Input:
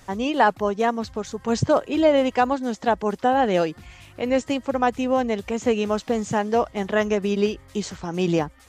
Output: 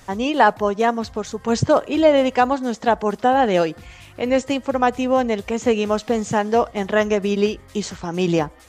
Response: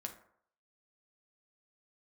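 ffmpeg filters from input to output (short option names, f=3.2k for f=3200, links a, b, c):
-filter_complex "[0:a]asplit=2[a][b];[b]highpass=320[c];[1:a]atrim=start_sample=2205,asetrate=43218,aresample=44100[d];[c][d]afir=irnorm=-1:irlink=0,volume=-15dB[e];[a][e]amix=inputs=2:normalize=0,volume=2.5dB"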